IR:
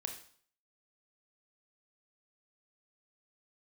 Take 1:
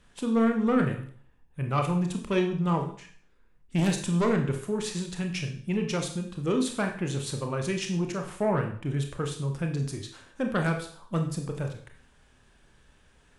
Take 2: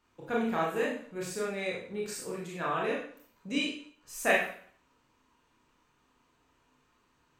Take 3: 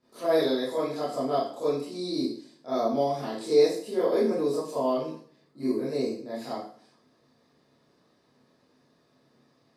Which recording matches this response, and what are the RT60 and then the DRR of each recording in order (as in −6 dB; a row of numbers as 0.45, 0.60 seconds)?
1; 0.50, 0.50, 0.50 seconds; 3.5, −4.5, −11.5 decibels